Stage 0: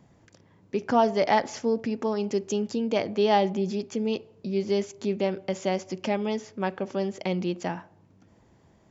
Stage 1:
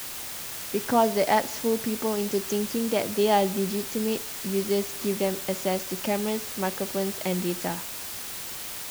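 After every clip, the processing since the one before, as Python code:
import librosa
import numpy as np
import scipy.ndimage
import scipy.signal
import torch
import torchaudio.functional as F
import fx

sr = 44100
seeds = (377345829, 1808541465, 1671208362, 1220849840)

y = fx.quant_dither(x, sr, seeds[0], bits=6, dither='triangular')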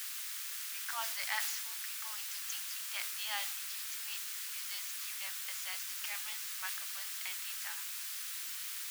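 y = scipy.signal.sosfilt(scipy.signal.cheby2(4, 60, 380.0, 'highpass', fs=sr, output='sos'), x)
y = fx.sustainer(y, sr, db_per_s=30.0)
y = F.gain(torch.from_numpy(y), -5.5).numpy()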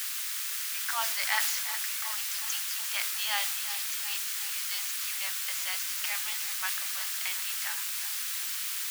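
y = fx.echo_feedback(x, sr, ms=365, feedback_pct=57, wet_db=-11.5)
y = F.gain(torch.from_numpy(y), 7.5).numpy()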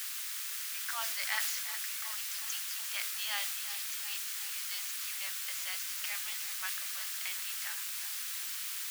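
y = fx.dynamic_eq(x, sr, hz=870.0, q=2.9, threshold_db=-53.0, ratio=4.0, max_db=-5)
y = F.gain(torch.from_numpy(y), -5.0).numpy()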